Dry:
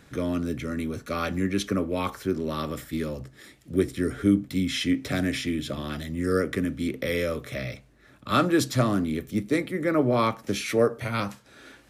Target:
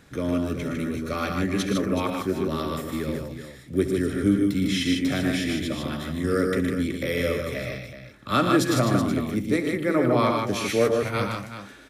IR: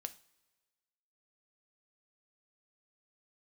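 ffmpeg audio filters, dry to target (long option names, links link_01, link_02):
-af "aecho=1:1:68|115|152|375:0.2|0.376|0.631|0.299"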